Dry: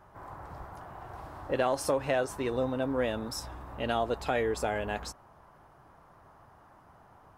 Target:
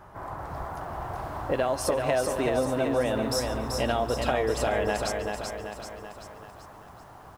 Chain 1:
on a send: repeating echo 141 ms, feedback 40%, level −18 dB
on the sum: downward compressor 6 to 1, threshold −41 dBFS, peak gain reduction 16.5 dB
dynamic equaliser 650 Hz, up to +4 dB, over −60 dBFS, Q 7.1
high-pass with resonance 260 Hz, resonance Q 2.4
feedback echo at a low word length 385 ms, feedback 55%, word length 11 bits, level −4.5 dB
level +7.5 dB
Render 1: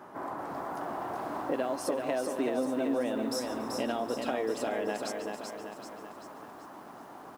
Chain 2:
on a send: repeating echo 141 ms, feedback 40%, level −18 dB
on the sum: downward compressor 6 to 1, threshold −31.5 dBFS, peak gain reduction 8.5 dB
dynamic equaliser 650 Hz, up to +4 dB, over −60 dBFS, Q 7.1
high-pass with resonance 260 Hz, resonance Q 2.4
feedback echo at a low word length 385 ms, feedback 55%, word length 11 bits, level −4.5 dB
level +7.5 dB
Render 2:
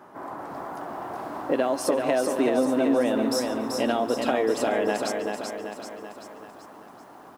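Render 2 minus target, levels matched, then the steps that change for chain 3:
250 Hz band +4.0 dB
remove: high-pass with resonance 260 Hz, resonance Q 2.4

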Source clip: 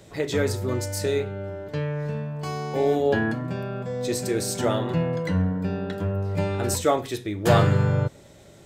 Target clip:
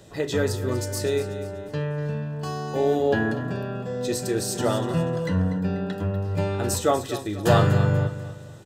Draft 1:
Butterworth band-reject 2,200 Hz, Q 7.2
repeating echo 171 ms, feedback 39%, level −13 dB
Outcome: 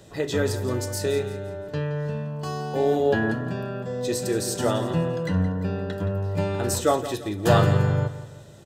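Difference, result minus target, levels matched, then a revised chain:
echo 72 ms early
Butterworth band-reject 2,200 Hz, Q 7.2
repeating echo 243 ms, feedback 39%, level −13 dB

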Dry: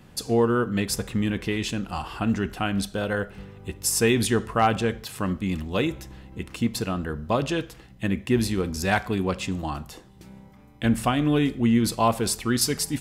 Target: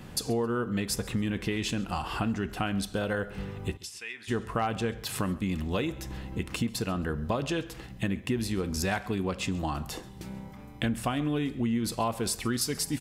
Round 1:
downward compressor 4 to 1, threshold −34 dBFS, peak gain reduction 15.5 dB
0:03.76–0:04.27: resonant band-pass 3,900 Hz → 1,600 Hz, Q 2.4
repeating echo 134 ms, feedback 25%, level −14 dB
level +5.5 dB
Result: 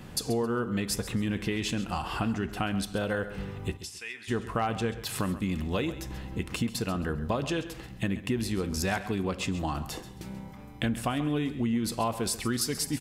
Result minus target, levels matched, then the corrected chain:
echo-to-direct +7.5 dB
downward compressor 4 to 1, threshold −34 dBFS, peak gain reduction 15.5 dB
0:03.76–0:04.27: resonant band-pass 3,900 Hz → 1,600 Hz, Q 2.4
repeating echo 134 ms, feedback 25%, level −21.5 dB
level +5.5 dB

